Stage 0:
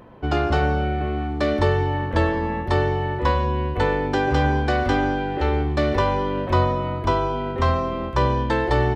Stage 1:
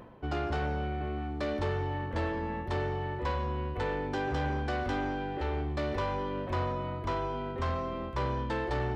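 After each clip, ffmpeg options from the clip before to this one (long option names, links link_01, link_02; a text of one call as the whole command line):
ffmpeg -i in.wav -af "areverse,acompressor=mode=upward:threshold=-23dB:ratio=2.5,areverse,asoftclip=type=tanh:threshold=-16.5dB,volume=-9dB" out.wav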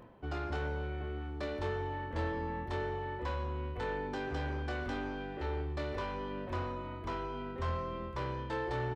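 ffmpeg -i in.wav -filter_complex "[0:a]asplit=2[link_01][link_02];[link_02]adelay=25,volume=-6dB[link_03];[link_01][link_03]amix=inputs=2:normalize=0,volume=-5.5dB" out.wav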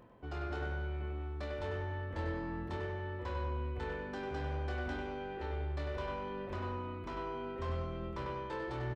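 ffmpeg -i in.wav -filter_complex "[0:a]asplit=2[link_01][link_02];[link_02]adelay=97,lowpass=frequency=4000:poles=1,volume=-4dB,asplit=2[link_03][link_04];[link_04]adelay=97,lowpass=frequency=4000:poles=1,volume=0.53,asplit=2[link_05][link_06];[link_06]adelay=97,lowpass=frequency=4000:poles=1,volume=0.53,asplit=2[link_07][link_08];[link_08]adelay=97,lowpass=frequency=4000:poles=1,volume=0.53,asplit=2[link_09][link_10];[link_10]adelay=97,lowpass=frequency=4000:poles=1,volume=0.53,asplit=2[link_11][link_12];[link_12]adelay=97,lowpass=frequency=4000:poles=1,volume=0.53,asplit=2[link_13][link_14];[link_14]adelay=97,lowpass=frequency=4000:poles=1,volume=0.53[link_15];[link_01][link_03][link_05][link_07][link_09][link_11][link_13][link_15]amix=inputs=8:normalize=0,volume=-4.5dB" out.wav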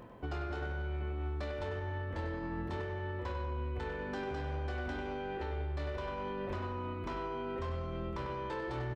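ffmpeg -i in.wav -af "alimiter=level_in=14dB:limit=-24dB:level=0:latency=1:release=254,volume=-14dB,volume=7.5dB" out.wav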